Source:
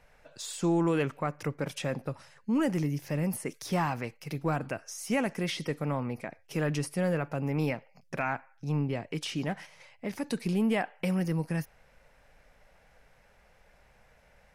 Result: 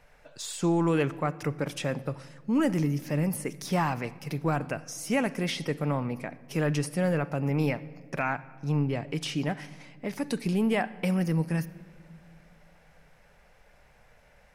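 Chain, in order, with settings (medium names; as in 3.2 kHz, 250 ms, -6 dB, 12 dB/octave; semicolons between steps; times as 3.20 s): simulated room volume 3500 m³, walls mixed, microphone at 0.36 m; trim +2 dB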